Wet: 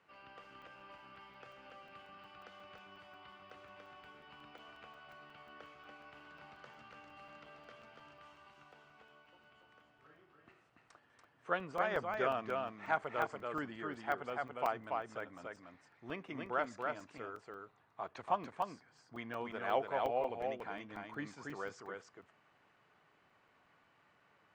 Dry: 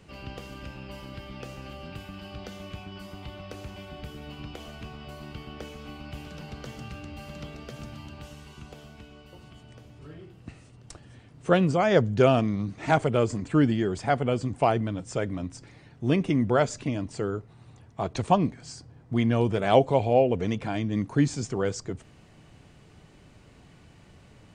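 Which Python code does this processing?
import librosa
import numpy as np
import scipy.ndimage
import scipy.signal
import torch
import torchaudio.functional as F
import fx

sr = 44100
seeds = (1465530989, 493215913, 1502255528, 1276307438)

p1 = fx.bandpass_q(x, sr, hz=1300.0, q=1.4)
p2 = p1 + fx.echo_single(p1, sr, ms=286, db=-3.5, dry=0)
p3 = fx.buffer_crackle(p2, sr, first_s=0.44, period_s=0.18, block=128, kind='zero')
y = p3 * librosa.db_to_amplitude(-6.5)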